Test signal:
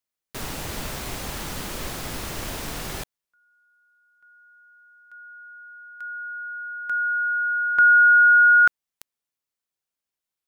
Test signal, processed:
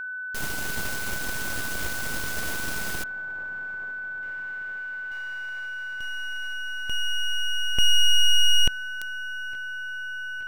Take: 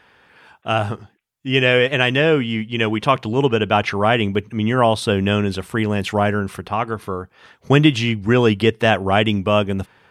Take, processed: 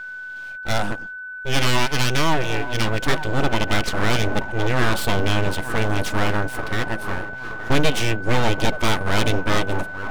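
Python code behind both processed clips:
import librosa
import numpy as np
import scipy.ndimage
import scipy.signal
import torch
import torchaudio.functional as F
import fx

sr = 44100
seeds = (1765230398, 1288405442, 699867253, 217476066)

y = fx.bass_treble(x, sr, bass_db=3, treble_db=4)
y = 10.0 ** (-6.5 / 20.0) * np.tanh(y / 10.0 ** (-6.5 / 20.0))
y = fx.echo_wet_bandpass(y, sr, ms=874, feedback_pct=69, hz=500.0, wet_db=-11)
y = np.abs(y)
y = y + 10.0 ** (-31.0 / 20.0) * np.sin(2.0 * np.pi * 1500.0 * np.arange(len(y)) / sr)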